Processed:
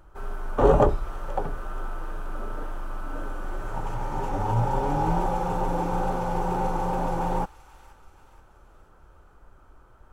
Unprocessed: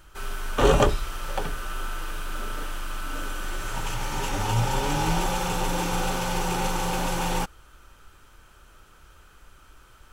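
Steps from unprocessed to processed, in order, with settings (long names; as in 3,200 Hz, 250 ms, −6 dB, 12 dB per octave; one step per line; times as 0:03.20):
drawn EQ curve 230 Hz 0 dB, 820 Hz +3 dB, 2,900 Hz −17 dB
tape wow and flutter 23 cents
delay with a high-pass on its return 478 ms, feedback 50%, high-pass 2,000 Hz, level −13 dB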